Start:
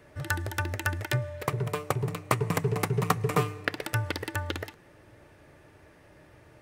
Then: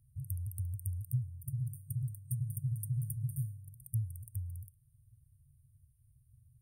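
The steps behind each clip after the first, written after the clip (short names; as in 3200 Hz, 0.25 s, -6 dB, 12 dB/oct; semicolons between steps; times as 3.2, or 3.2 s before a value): FFT band-reject 140–8600 Hz; gain -4 dB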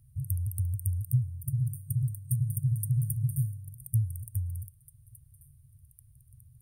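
delay with a stepping band-pass 0.683 s, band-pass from 1400 Hz, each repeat 1.4 oct, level -11 dB; gain +7.5 dB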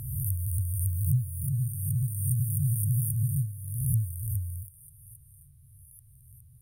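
spectral swells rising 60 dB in 1.21 s; gain -1 dB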